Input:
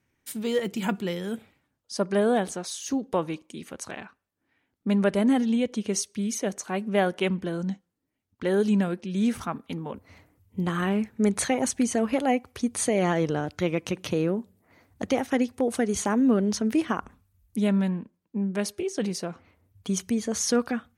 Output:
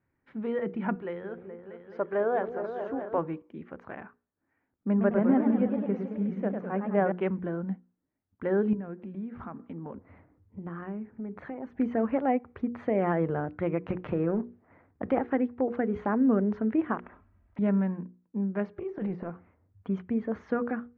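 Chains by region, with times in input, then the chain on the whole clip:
0:00.95–0:03.18: high-pass filter 48 Hz + parametric band 210 Hz −14 dB 0.63 octaves + echo whose low-pass opens from repeat to repeat 212 ms, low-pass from 400 Hz, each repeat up 2 octaves, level −6 dB
0:04.88–0:07.12: high-shelf EQ 3,200 Hz −9.5 dB + feedback echo with a swinging delay time 106 ms, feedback 69%, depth 196 cents, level −6 dB
0:08.73–0:11.80: parametric band 270 Hz +4.5 dB 1.7 octaves + downward compressor 4 to 1, threshold −34 dBFS
0:13.89–0:15.19: mu-law and A-law mismatch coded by A + transient designer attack +1 dB, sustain +12 dB
0:16.97–0:17.59: comb filter 3.1 ms, depth 55% + every bin compressed towards the loudest bin 10 to 1
0:18.76–0:19.30: transient designer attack −12 dB, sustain +9 dB + de-essing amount 90%
whole clip: low-pass filter 1,800 Hz 24 dB per octave; mains-hum notches 60/120/180/240/300/360/420/480 Hz; level −2 dB

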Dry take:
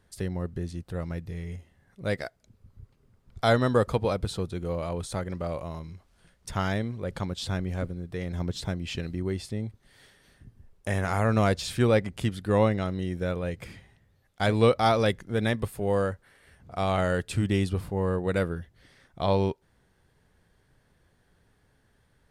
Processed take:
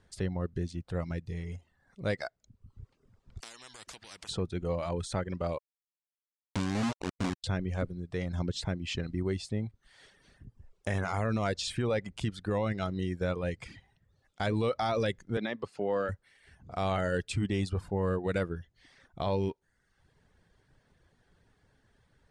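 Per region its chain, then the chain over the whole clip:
0:03.40–0:04.29: downward compressor 4 to 1, threshold −30 dBFS + every bin compressed towards the loudest bin 10 to 1
0:05.58–0:07.44: formant resonators in series i + log-companded quantiser 2 bits
0:15.37–0:16.09: three-way crossover with the lows and the highs turned down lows −20 dB, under 180 Hz, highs −21 dB, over 5,100 Hz + one half of a high-frequency compander encoder only
whole clip: low-pass filter 8,500 Hz 24 dB per octave; reverb reduction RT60 0.64 s; brickwall limiter −21.5 dBFS

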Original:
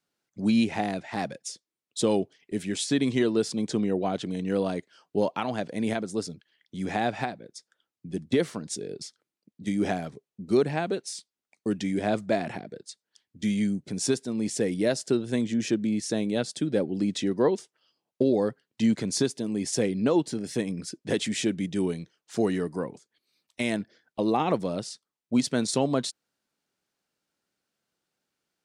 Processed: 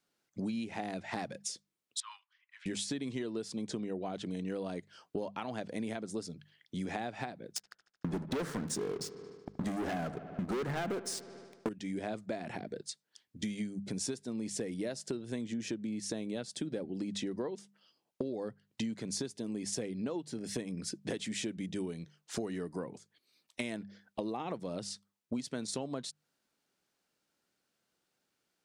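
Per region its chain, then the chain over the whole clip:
0:02.00–0:02.66: Butterworth high-pass 990 Hz 96 dB per octave + head-to-tape spacing loss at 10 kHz 39 dB
0:07.56–0:11.69: high shelf with overshoot 2,000 Hz −6 dB, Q 3 + leveller curve on the samples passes 5 + delay with a low-pass on its return 75 ms, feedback 62%, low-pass 2,700 Hz, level −17 dB
whole clip: mains-hum notches 50/100/150/200 Hz; downward compressor 10 to 1, threshold −35 dBFS; level +1 dB

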